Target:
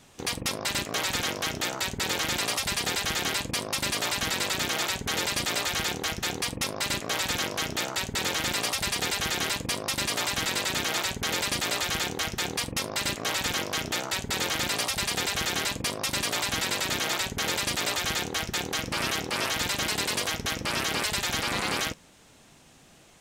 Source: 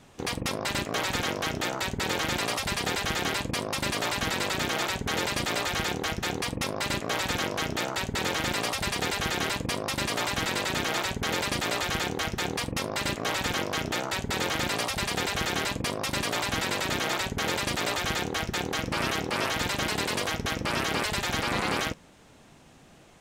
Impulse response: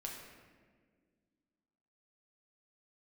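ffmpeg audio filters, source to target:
-af "highshelf=frequency=2700:gain=8.5,volume=-3dB"

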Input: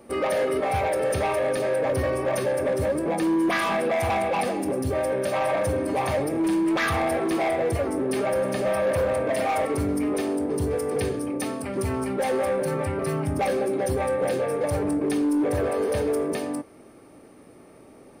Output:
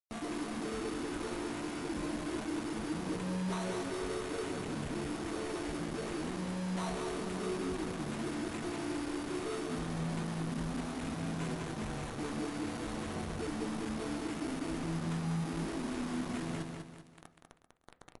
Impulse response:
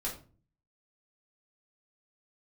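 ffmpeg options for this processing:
-filter_complex "[0:a]lowpass=9400,bass=frequency=250:gain=-7,treble=frequency=4000:gain=4,areverse,acompressor=threshold=-38dB:ratio=16,areverse,acrusher=samples=5:mix=1:aa=0.000001,asetrate=24750,aresample=44100,atempo=1.7818,acrusher=bits=6:mix=0:aa=0.000001,aecho=1:1:195|390|585|780|975:0.562|0.219|0.0855|0.0334|0.013,asplit=2[link_01][link_02];[1:a]atrim=start_sample=2205,lowpass=2300[link_03];[link_02][link_03]afir=irnorm=-1:irlink=0,volume=-11.5dB[link_04];[link_01][link_04]amix=inputs=2:normalize=0" -ar 24000 -c:a libmp3lame -b:a 80k

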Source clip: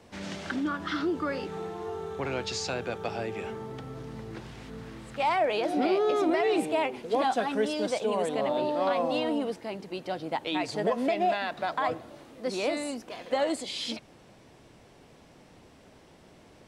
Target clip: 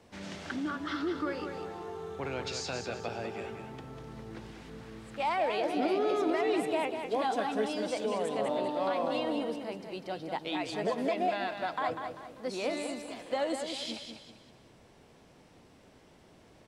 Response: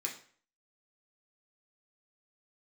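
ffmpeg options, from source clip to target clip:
-af "aecho=1:1:196|392|588|784:0.447|0.161|0.0579|0.0208,volume=-4.5dB"

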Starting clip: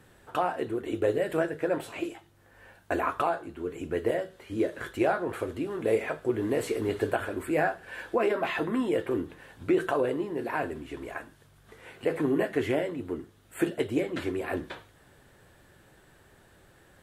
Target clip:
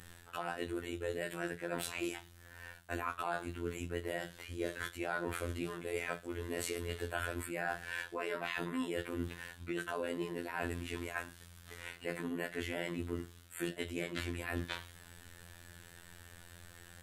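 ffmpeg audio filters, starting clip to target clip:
ffmpeg -i in.wav -af "equalizer=frequency=430:width=0.32:gain=-12.5,areverse,acompressor=threshold=-44dB:ratio=10,areverse,afftfilt=real='hypot(re,im)*cos(PI*b)':imag='0':win_size=2048:overlap=0.75,volume=12dB" out.wav

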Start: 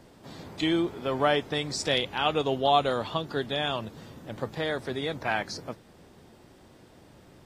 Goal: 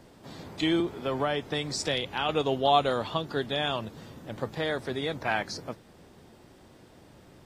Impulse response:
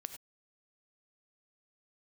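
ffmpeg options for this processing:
-filter_complex "[0:a]asettb=1/sr,asplit=3[link_01][link_02][link_03];[link_01]atrim=end=0.804[link_04];[link_02]atrim=start=0.8:end=2.29,asetpts=PTS-STARTPTS,afade=type=in:duration=0.004:curve=qsin,afade=type=out:start_time=1.486:duration=0.004:curve=qsin,acrossover=split=160[link_05][link_06];[link_06]acompressor=threshold=-25dB:ratio=4[link_07];[link_05][link_07]amix=inputs=2:normalize=0[link_08];[link_03]atrim=start=2.286[link_09];[link_04][link_08]acrossfade=duration=0.004:curve1=hsin:curve2=qsin[link_10];[link_10][link_09]acrossfade=duration=0.004:curve1=qsin:curve2=hsin"

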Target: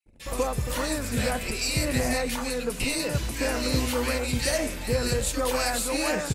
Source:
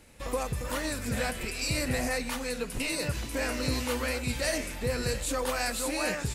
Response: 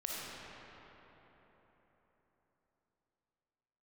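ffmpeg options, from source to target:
-filter_complex "[0:a]aeval=exprs='0.15*(cos(1*acos(clip(val(0)/0.15,-1,1)))-cos(1*PI/2))+0.00596*(cos(3*acos(clip(val(0)/0.15,-1,1)))-cos(3*PI/2))':channel_layout=same,acrossover=split=1800[link_01][link_02];[link_01]adelay=60[link_03];[link_03][link_02]amix=inputs=2:normalize=0,anlmdn=0.000631,volume=5.5dB"

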